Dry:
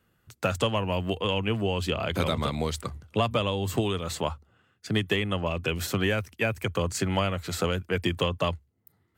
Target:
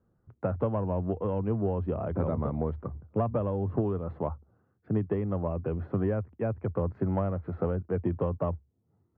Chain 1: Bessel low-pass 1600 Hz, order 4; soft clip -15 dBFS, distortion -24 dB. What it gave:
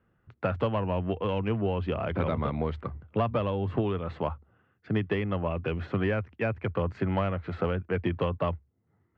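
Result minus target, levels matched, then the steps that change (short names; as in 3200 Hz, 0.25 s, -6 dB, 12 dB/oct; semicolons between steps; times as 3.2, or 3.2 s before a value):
2000 Hz band +12.5 dB
change: Bessel low-pass 750 Hz, order 4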